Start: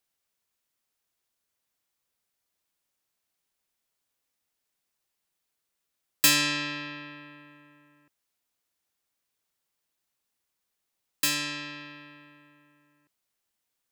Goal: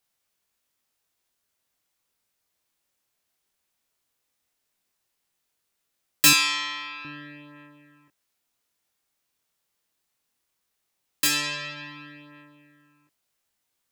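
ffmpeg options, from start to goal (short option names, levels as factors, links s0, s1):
-filter_complex "[0:a]flanger=delay=19.5:depth=5:speed=0.15,asettb=1/sr,asplit=3[s0][s1][s2];[s0]atrim=end=6.334[s3];[s1]atrim=start=6.33:end=7.05,asetpts=PTS-STARTPTS,afade=t=in:d=0.004:c=qsin,afade=t=out:st=0.716:d=0.004:c=qsin,highpass=700[s4];[s2]atrim=start=7.046[s5];[s3][s4]acrossfade=d=0.004:c1=hsin:c2=qsin[s6];[s6][s5]acrossfade=d=0.004:c1=qsin:c2=hsin,volume=2.24"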